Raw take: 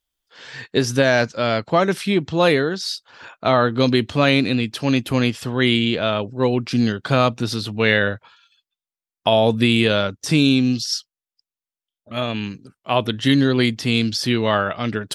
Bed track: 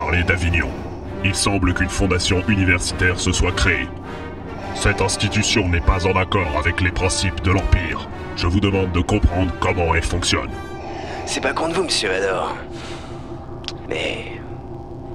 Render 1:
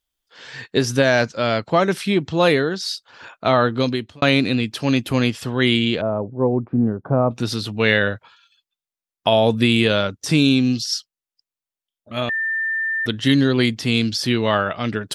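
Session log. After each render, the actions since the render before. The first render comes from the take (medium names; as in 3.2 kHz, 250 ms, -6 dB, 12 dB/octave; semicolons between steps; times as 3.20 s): 3.69–4.22 s: fade out; 6.01–7.31 s: low-pass 1 kHz 24 dB/octave; 12.29–13.06 s: bleep 1.79 kHz -19.5 dBFS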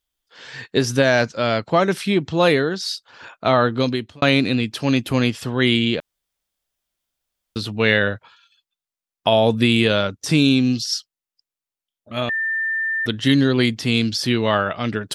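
6.00–7.56 s: room tone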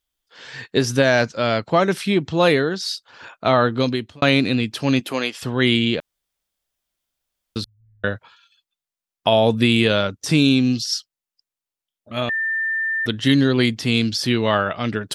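4.99–5.41 s: high-pass 250 Hz -> 640 Hz; 7.64–8.04 s: inverse Chebyshev band-stop 290–6800 Hz, stop band 80 dB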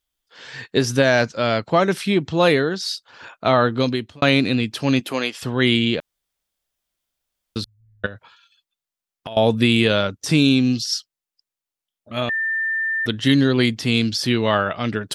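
8.06–9.37 s: compression, threshold -30 dBFS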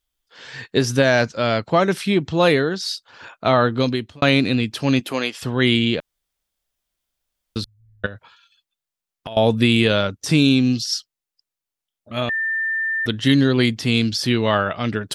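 bass shelf 62 Hz +6.5 dB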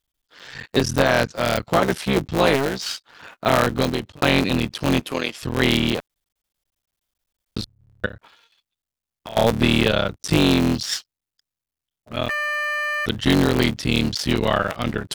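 cycle switcher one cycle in 3, muted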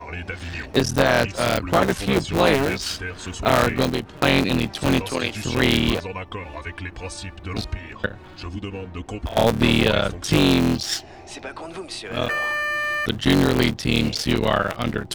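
add bed track -14 dB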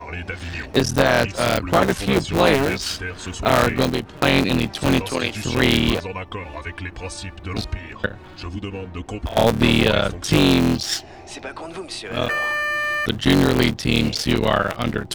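trim +1.5 dB; peak limiter -2 dBFS, peak gain reduction 1.5 dB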